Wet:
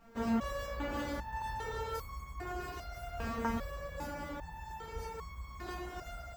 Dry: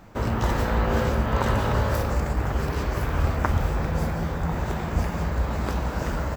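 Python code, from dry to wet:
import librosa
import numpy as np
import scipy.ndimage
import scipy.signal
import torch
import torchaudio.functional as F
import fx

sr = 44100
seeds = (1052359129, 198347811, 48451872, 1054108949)

y = fx.resonator_held(x, sr, hz=2.5, low_hz=230.0, high_hz=1100.0)
y = y * 10.0 ** (4.5 / 20.0)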